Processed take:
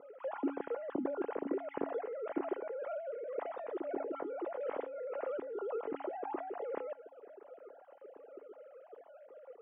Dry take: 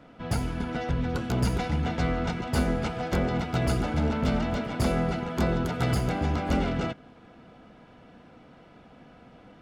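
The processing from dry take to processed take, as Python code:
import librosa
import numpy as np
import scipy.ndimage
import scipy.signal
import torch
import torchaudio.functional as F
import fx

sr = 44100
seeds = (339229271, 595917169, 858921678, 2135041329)

y = fx.sine_speech(x, sr)
y = fx.over_compress(y, sr, threshold_db=-31.0, ratio=-1.0)
y = fx.bandpass_q(y, sr, hz=310.0, q=1.4)
y = fx.air_absorb(y, sr, metres=120.0)
y = fx.comb_fb(y, sr, f0_hz=280.0, decay_s=0.44, harmonics='odd', damping=0.0, mix_pct=70)
y = F.gain(torch.from_numpy(y), 8.5).numpy()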